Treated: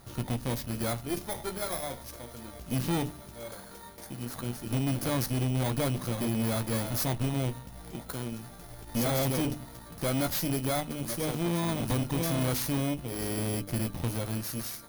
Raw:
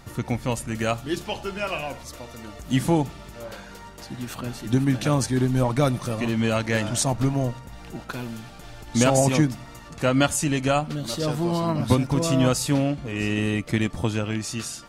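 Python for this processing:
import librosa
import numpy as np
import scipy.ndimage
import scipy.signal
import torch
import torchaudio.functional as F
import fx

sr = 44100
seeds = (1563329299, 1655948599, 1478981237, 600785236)

y = fx.bit_reversed(x, sr, seeds[0], block=16)
y = fx.hum_notches(y, sr, base_hz=50, count=6)
y = fx.doubler(y, sr, ms=17.0, db=-13.5)
y = fx.tube_stage(y, sr, drive_db=25.0, bias=0.75)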